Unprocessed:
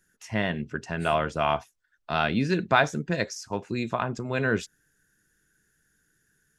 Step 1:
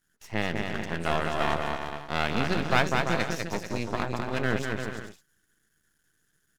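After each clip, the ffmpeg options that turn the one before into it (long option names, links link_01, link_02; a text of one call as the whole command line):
ffmpeg -i in.wav -af "aecho=1:1:200|340|438|506.6|554.6:0.631|0.398|0.251|0.158|0.1,aeval=exprs='max(val(0),0)':channel_layout=same" out.wav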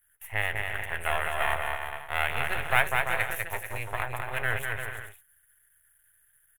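ffmpeg -i in.wav -af "firequalizer=gain_entry='entry(110,0);entry(180,-23);entry(270,-22);entry(410,-9);entry(770,0);entry(1200,-2);entry(1900,6);entry(3300,-2);entry(4800,-24);entry(10000,14)':delay=0.05:min_phase=1" out.wav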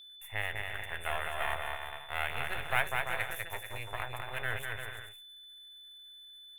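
ffmpeg -i in.wav -af "aeval=exprs='val(0)+0.00708*sin(2*PI*3500*n/s)':channel_layout=same,volume=-6.5dB" out.wav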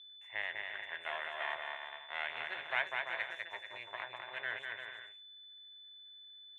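ffmpeg -i in.wav -af "highpass=460,equalizer=frequency=470:width_type=q:width=4:gain=-9,equalizer=frequency=770:width_type=q:width=4:gain=-7,equalizer=frequency=1300:width_type=q:width=4:gain=-9,equalizer=frequency=2600:width_type=q:width=4:gain=-6,equalizer=frequency=4800:width_type=q:width=4:gain=-9,lowpass=frequency=4900:width=0.5412,lowpass=frequency=4900:width=1.3066" out.wav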